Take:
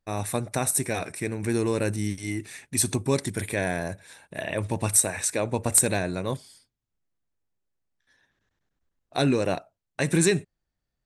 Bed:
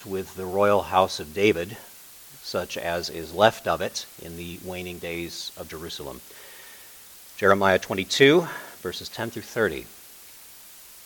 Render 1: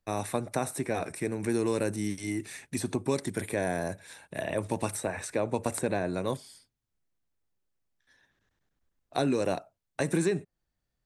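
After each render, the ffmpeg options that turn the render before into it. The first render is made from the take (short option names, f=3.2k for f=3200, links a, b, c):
-filter_complex "[0:a]acrossover=split=180|1500|4300[a][b][c][d];[a]acompressor=threshold=-42dB:ratio=4[e];[b]acompressor=threshold=-24dB:ratio=4[f];[c]acompressor=threshold=-46dB:ratio=4[g];[d]acompressor=threshold=-42dB:ratio=4[h];[e][f][g][h]amix=inputs=4:normalize=0"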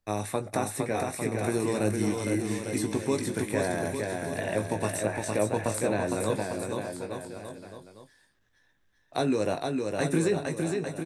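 -filter_complex "[0:a]asplit=2[a][b];[b]adelay=19,volume=-8dB[c];[a][c]amix=inputs=2:normalize=0,aecho=1:1:460|851|1183|1466|1706:0.631|0.398|0.251|0.158|0.1"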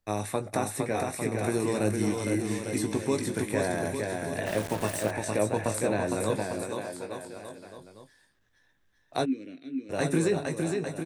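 -filter_complex "[0:a]asettb=1/sr,asplit=3[a][b][c];[a]atrim=end=4.464[d];[b]atrim=start=4.46:end=5.11,asetpts=PTS-STARTPTS,afade=t=in:d=0.004:c=qsin,afade=t=out:st=0.646:d=0.004:c=qsin,aeval=exprs='val(0)*gte(abs(val(0)),0.0211)':c=same[e];[c]atrim=start=5.106[f];[d][e]acrossfade=d=0.004:c1=hsin:c2=qsin[g];[g][f]acrossfade=d=0.004:c1=qsin:c2=hsin,asettb=1/sr,asplit=3[h][i][j];[h]atrim=end=6.644[k];[i]atrim=start=6.64:end=7.78,asetpts=PTS-STARTPTS,afade=t=in:d=0.004:c=qsin,afade=t=out:st=1.136:d=0.004:c=qsin,lowshelf=f=190:g=-8.5[l];[j]atrim=start=7.776[m];[k][l]acrossfade=d=0.004:c1=hsin:c2=qsin[n];[n][m]acrossfade=d=0.004:c1=qsin:c2=hsin,asplit=3[o][p][q];[o]afade=t=out:st=9.24:d=0.02[r];[p]asplit=3[s][t][u];[s]bandpass=f=270:t=q:w=8,volume=0dB[v];[t]bandpass=f=2.29k:t=q:w=8,volume=-6dB[w];[u]bandpass=f=3.01k:t=q:w=8,volume=-9dB[x];[v][w][x]amix=inputs=3:normalize=0,afade=t=in:st=9.24:d=0.02,afade=t=out:st=9.89:d=0.02[y];[q]afade=t=in:st=9.89:d=0.02[z];[r][y][z]amix=inputs=3:normalize=0"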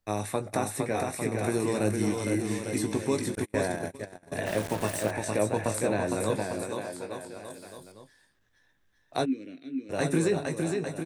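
-filter_complex "[0:a]asettb=1/sr,asplit=3[a][b][c];[a]atrim=end=3.354[d];[b]atrim=start=3.35:end=4.32,asetpts=PTS-STARTPTS,afade=t=in:d=0.004:c=qsin,afade=t=out:st=0.966:d=0.004:c=qsin,agate=range=-32dB:threshold=-30dB:ratio=16:release=100:detection=peak[e];[c]atrim=start=4.316[f];[d][e]acrossfade=d=0.004:c1=hsin:c2=qsin[g];[g][f]acrossfade=d=0.004:c1=qsin:c2=hsin,asettb=1/sr,asplit=3[h][i][j];[h]atrim=end=7.504[k];[i]atrim=start=7.5:end=7.92,asetpts=PTS-STARTPTS,afade=t=in:d=0.004:c=qsin,afade=t=out:st=0.416:d=0.004:c=qsin,aemphasis=mode=production:type=50kf[l];[j]atrim=start=7.916[m];[k][l]acrossfade=d=0.004:c1=hsin:c2=qsin[n];[n][m]acrossfade=d=0.004:c1=qsin:c2=hsin"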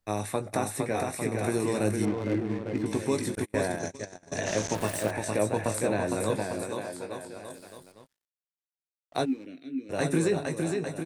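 -filter_complex "[0:a]asettb=1/sr,asplit=3[a][b][c];[a]atrim=end=2.054[d];[b]atrim=start=2.05:end=2.86,asetpts=PTS-STARTPTS,afade=t=in:d=0.004:c=qsin,afade=t=out:st=0.806:d=0.004:c=qsin,adynamicsmooth=sensitivity=4:basefreq=700[e];[c]atrim=start=2.856[f];[d][e]acrossfade=d=0.004:c1=hsin:c2=qsin[g];[g][f]acrossfade=d=0.004:c1=qsin:c2=hsin,asettb=1/sr,asplit=3[h][i][j];[h]atrim=end=3.794[k];[i]atrim=start=3.79:end=4.75,asetpts=PTS-STARTPTS,afade=t=in:d=0.004:c=qsin,afade=t=out:st=0.956:d=0.004:c=qsin,lowpass=f=6.3k:t=q:w=7[l];[j]atrim=start=4.746[m];[k][l]acrossfade=d=0.004:c1=hsin:c2=qsin[n];[n][m]acrossfade=d=0.004:c1=qsin:c2=hsin,asettb=1/sr,asplit=3[o][p][q];[o]atrim=end=7.564[r];[p]atrim=start=7.56:end=9.46,asetpts=PTS-STARTPTS,afade=t=in:d=0.004:c=qsin,afade=t=out:st=1.896:d=0.004:c=qsin,aeval=exprs='sgn(val(0))*max(abs(val(0))-0.00158,0)':c=same[s];[q]atrim=start=9.456[t];[r][s]acrossfade=d=0.004:c1=hsin:c2=qsin[u];[u][t]acrossfade=d=0.004:c1=qsin:c2=hsin"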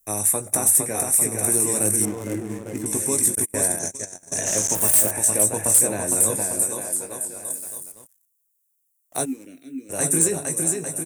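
-af "aexciter=amount=6.8:drive=9.9:freq=6.6k,volume=9.5dB,asoftclip=hard,volume=-9.5dB"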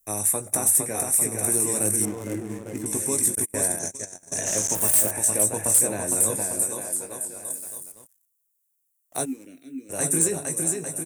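-af "volume=-2.5dB"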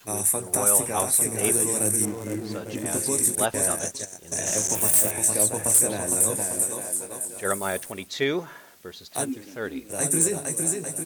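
-filter_complex "[1:a]volume=-9dB[a];[0:a][a]amix=inputs=2:normalize=0"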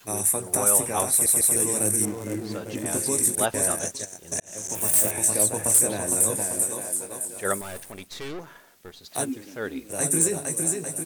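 -filter_complex "[0:a]asettb=1/sr,asplit=3[a][b][c];[a]atrim=end=7.614[d];[b]atrim=start=7.61:end=9.04,asetpts=PTS-STARTPTS,afade=t=in:d=0.004:c=qsin,afade=t=out:st=1.426:d=0.004:c=qsin,aeval=exprs='(tanh(44.7*val(0)+0.8)-tanh(0.8))/44.7':c=same[e];[c]atrim=start=9.036[f];[d][e]acrossfade=d=0.004:c1=hsin:c2=qsin[g];[g][f]acrossfade=d=0.004:c1=qsin:c2=hsin,asplit=5[h][i][j][k][l];[h]atrim=end=1.262[m];[i]atrim=start=1.108:end=1.262[n];[j]atrim=start=1.108:end=1.262[o];[k]atrim=start=1.558:end=4.4,asetpts=PTS-STARTPTS,afade=t=out:st=2.838:d=0.004:c=hsin[p];[l]atrim=start=4.4,asetpts=PTS-STARTPTS,afade=t=in:d=0.63[q];[m][n]acrossfade=d=0.004:c1=hsin:c2=hsin[r];[r][o]acrossfade=d=0.004:c1=hsin:c2=hsin[s];[p][q]concat=n=2:v=0:a=1[t];[s][t]acrossfade=d=0.004:c1=hsin:c2=hsin"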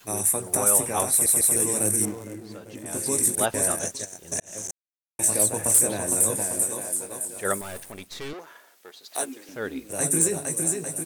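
-filter_complex "[0:a]asettb=1/sr,asplit=3[a][b][c];[a]atrim=end=8.334[d];[b]atrim=start=8.33:end=9.49,asetpts=PTS-STARTPTS,afade=t=in:d=0.004:c=qsin,afade=t=out:st=1.156:d=0.004:c=qsin,highpass=410[e];[c]atrim=start=9.486[f];[d][e]acrossfade=d=0.004:c1=hsin:c2=qsin[g];[g][f]acrossfade=d=0.004:c1=qsin:c2=hsin,asplit=5[h][i][j][k][l];[h]atrim=end=2.32,asetpts=PTS-STARTPTS,afade=t=out:st=2.04:d=0.28:silence=0.398107[m];[i]atrim=start=2.32:end=2.85,asetpts=PTS-STARTPTS,volume=-8dB[n];[j]atrim=start=2.85:end=4.71,asetpts=PTS-STARTPTS,afade=t=in:d=0.28:silence=0.398107,afade=t=out:st=1.856:d=0.004:c=hsin[o];[k]atrim=start=4.71:end=5.19,asetpts=PTS-STARTPTS,volume=0[p];[l]atrim=start=5.19,asetpts=PTS-STARTPTS,afade=t=in:d=0.004:c=hsin[q];[m][n][o][p][q]concat=n=5:v=0:a=1"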